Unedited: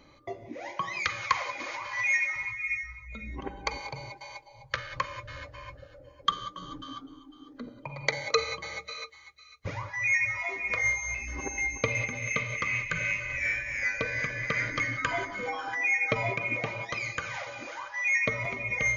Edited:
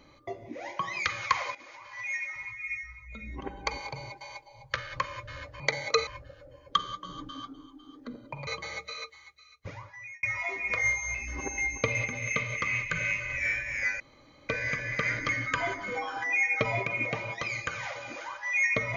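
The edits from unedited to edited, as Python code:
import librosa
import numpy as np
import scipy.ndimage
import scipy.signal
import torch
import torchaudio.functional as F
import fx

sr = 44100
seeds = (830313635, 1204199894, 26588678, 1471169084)

y = fx.edit(x, sr, fx.fade_in_from(start_s=1.55, length_s=2.13, floor_db=-14.5),
    fx.move(start_s=8.0, length_s=0.47, to_s=5.6),
    fx.fade_out_span(start_s=9.16, length_s=1.07),
    fx.insert_room_tone(at_s=14.0, length_s=0.49), tone=tone)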